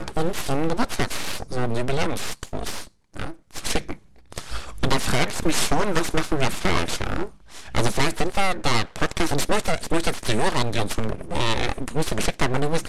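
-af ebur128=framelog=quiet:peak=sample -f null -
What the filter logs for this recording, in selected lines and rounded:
Integrated loudness:
  I:         -25.3 LUFS
  Threshold: -35.7 LUFS
Loudness range:
  LRA:         5.4 LU
  Threshold: -45.6 LUFS
  LRA low:   -29.7 LUFS
  LRA high:  -24.2 LUFS
Sample peak:
  Peak:       -7.7 dBFS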